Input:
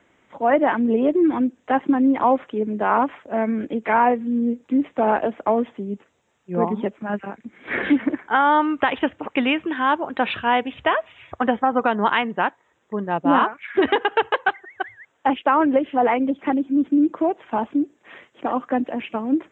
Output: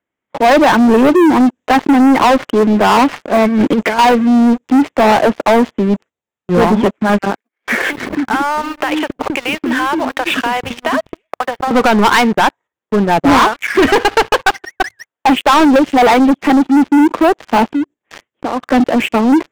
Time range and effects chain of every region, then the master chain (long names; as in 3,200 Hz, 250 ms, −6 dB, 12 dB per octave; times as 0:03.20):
0:03.47–0:03.99: parametric band 1,000 Hz −6.5 dB 0.82 octaves + compressor whose output falls as the input rises −26 dBFS, ratio −0.5
0:07.36–0:11.71: mu-law and A-law mismatch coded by A + downward compressor 16 to 1, threshold −26 dBFS + multiband delay without the direct sound highs, lows 270 ms, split 370 Hz
0:17.69–0:18.72: low-shelf EQ 87 Hz +12 dB + downward compressor 2 to 1, threshold −40 dBFS
whole clip: noise gate −44 dBFS, range −10 dB; leveller curve on the samples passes 5; level −1.5 dB